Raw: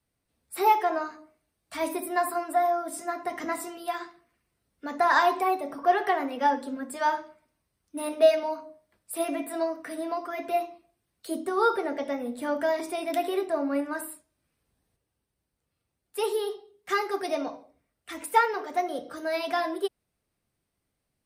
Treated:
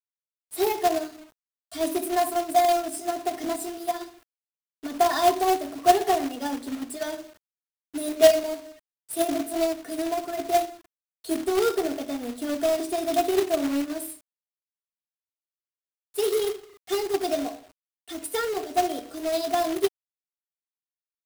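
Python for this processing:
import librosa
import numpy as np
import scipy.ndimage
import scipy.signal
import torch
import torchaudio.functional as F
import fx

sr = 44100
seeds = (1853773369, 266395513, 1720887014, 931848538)

y = fx.band_shelf(x, sr, hz=1500.0, db=-11.0, octaves=1.7)
y = y + 0.85 * np.pad(y, (int(2.8 * sr / 1000.0), 0))[:len(y)]
y = fx.quant_companded(y, sr, bits=4)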